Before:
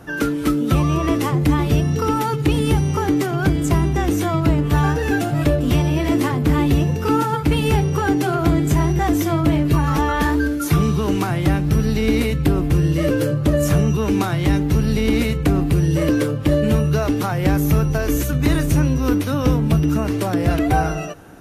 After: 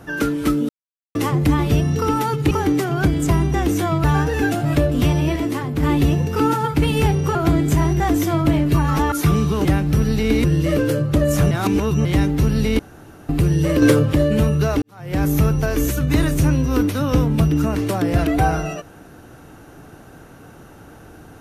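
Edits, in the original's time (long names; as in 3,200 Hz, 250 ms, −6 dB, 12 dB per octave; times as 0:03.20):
0:00.69–0:01.15: silence
0:02.51–0:02.93: remove
0:04.46–0:04.73: remove
0:06.05–0:06.52: clip gain −4.5 dB
0:08.04–0:08.34: remove
0:10.11–0:10.59: remove
0:11.12–0:11.43: remove
0:12.22–0:12.76: remove
0:13.83–0:14.37: reverse
0:15.11–0:15.61: fill with room tone
0:16.14–0:16.45: clip gain +6.5 dB
0:17.14–0:17.57: fade in quadratic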